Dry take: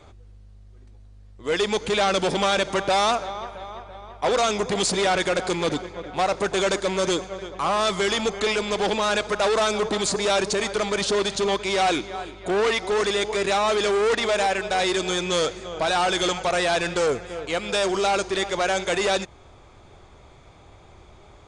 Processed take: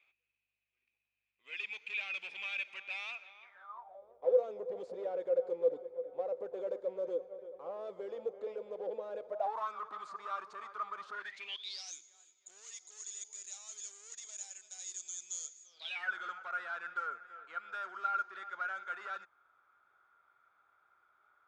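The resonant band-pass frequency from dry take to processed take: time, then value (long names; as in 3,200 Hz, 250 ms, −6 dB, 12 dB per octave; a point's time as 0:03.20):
resonant band-pass, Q 17
0:03.42 2,500 Hz
0:04.04 510 Hz
0:09.24 510 Hz
0:09.71 1,200 Hz
0:11.08 1,200 Hz
0:11.95 6,800 Hz
0:15.65 6,800 Hz
0:16.11 1,400 Hz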